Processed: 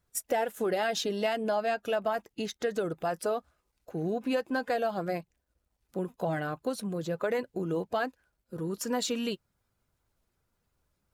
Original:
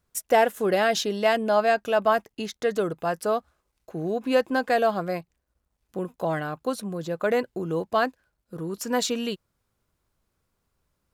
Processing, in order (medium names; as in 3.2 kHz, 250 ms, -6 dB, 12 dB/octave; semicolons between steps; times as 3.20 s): coarse spectral quantiser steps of 15 dB; band-stop 1.1 kHz, Q 16; compression 4:1, threshold -25 dBFS, peak gain reduction 8.5 dB; trim -1.5 dB